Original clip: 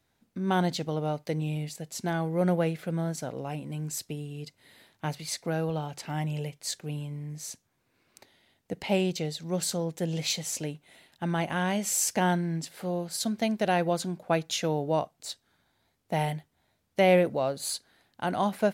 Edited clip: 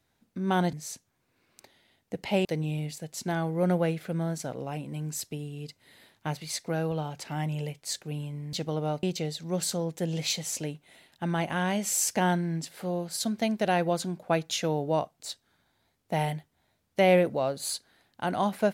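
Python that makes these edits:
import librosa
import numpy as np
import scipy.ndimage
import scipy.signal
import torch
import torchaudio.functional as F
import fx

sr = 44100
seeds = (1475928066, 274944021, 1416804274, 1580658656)

y = fx.edit(x, sr, fx.swap(start_s=0.73, length_s=0.5, other_s=7.31, other_length_s=1.72), tone=tone)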